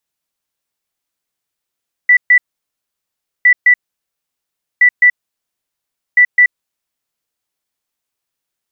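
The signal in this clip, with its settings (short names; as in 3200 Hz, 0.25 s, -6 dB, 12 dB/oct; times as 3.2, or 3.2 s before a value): beep pattern sine 1970 Hz, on 0.08 s, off 0.13 s, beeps 2, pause 1.07 s, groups 4, -4 dBFS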